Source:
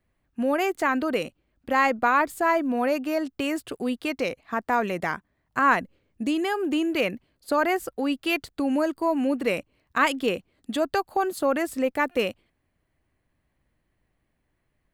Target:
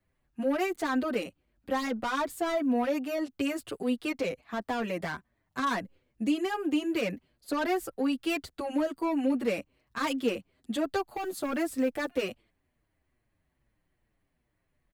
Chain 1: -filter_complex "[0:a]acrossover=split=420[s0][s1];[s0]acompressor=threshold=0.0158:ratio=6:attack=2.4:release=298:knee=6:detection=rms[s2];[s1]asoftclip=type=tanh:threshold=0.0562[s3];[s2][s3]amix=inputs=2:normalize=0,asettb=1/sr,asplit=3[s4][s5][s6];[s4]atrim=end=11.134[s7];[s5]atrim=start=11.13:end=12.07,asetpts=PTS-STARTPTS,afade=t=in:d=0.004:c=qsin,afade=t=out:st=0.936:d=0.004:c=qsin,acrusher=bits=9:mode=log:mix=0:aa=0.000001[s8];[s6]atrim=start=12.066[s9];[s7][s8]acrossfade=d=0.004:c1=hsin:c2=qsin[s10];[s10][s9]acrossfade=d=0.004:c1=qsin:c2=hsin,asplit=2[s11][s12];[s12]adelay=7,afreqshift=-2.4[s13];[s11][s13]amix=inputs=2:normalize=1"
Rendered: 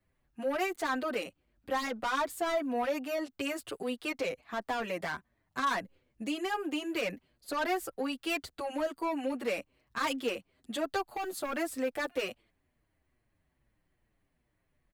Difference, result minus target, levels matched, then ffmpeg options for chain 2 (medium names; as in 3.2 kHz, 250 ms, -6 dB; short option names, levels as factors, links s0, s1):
compression: peak gain reduction +12.5 dB
-filter_complex "[0:a]acrossover=split=420[s0][s1];[s1]asoftclip=type=tanh:threshold=0.0562[s2];[s0][s2]amix=inputs=2:normalize=0,asettb=1/sr,asplit=3[s3][s4][s5];[s3]atrim=end=11.134[s6];[s4]atrim=start=11.13:end=12.07,asetpts=PTS-STARTPTS,afade=t=in:d=0.004:c=qsin,afade=t=out:st=0.936:d=0.004:c=qsin,acrusher=bits=9:mode=log:mix=0:aa=0.000001[s7];[s5]atrim=start=12.066[s8];[s6][s7]acrossfade=d=0.004:c1=hsin:c2=qsin[s9];[s9][s8]acrossfade=d=0.004:c1=qsin:c2=hsin,asplit=2[s10][s11];[s11]adelay=7,afreqshift=-2.4[s12];[s10][s12]amix=inputs=2:normalize=1"